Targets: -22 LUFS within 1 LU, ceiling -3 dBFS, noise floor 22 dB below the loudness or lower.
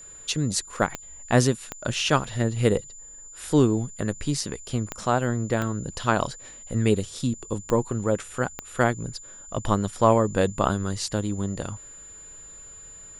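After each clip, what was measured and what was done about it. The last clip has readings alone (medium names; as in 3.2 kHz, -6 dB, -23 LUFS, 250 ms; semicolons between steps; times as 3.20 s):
clicks found 6; steady tone 7.1 kHz; tone level -42 dBFS; loudness -25.5 LUFS; peak level -5.0 dBFS; loudness target -22.0 LUFS
-> de-click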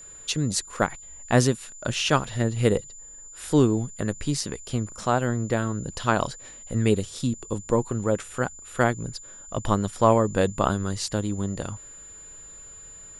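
clicks found 0; steady tone 7.1 kHz; tone level -42 dBFS
-> band-stop 7.1 kHz, Q 30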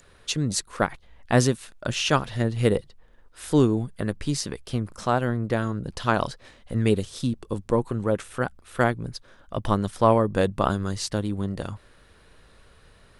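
steady tone not found; loudness -25.5 LUFS; peak level -5.0 dBFS; loudness target -22.0 LUFS
-> trim +3.5 dB; peak limiter -3 dBFS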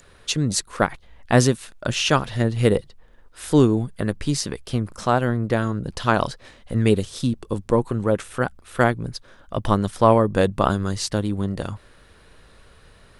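loudness -22.0 LUFS; peak level -3.0 dBFS; noise floor -52 dBFS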